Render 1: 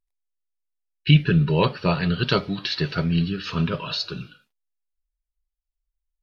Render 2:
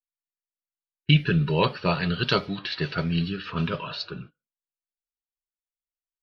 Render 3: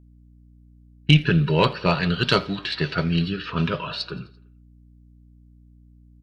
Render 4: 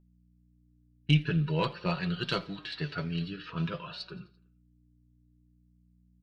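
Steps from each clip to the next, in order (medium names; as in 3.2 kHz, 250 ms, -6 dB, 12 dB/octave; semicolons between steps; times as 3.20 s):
level-controlled noise filter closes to 540 Hz, open at -18 dBFS; gate -39 dBFS, range -23 dB; bass shelf 460 Hz -4.5 dB
valve stage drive 8 dB, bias 0.45; feedback delay 85 ms, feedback 59%, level -23.5 dB; hum 60 Hz, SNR 26 dB; trim +5 dB
flange 0.49 Hz, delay 5.3 ms, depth 1.8 ms, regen +42%; trim -7.5 dB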